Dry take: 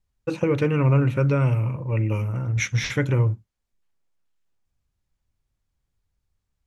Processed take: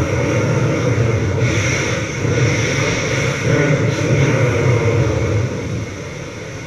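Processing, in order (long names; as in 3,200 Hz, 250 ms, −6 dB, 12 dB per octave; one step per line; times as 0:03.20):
compressor on every frequency bin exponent 0.2
extreme stretch with random phases 5.2×, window 0.05 s, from 0:02.30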